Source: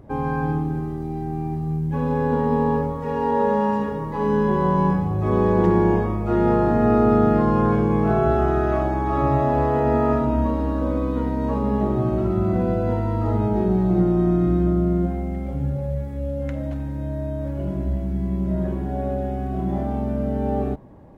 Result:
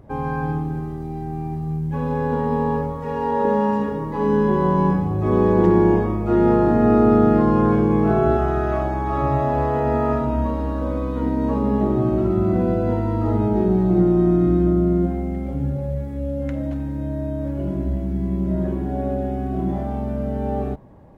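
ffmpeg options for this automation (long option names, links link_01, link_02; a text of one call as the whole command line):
ffmpeg -i in.wav -af "asetnsamples=nb_out_samples=441:pad=0,asendcmd='3.45 equalizer g 5;8.37 equalizer g -3;11.22 equalizer g 5;19.72 equalizer g -3',equalizer=frequency=300:width_type=o:width=0.79:gain=-3" out.wav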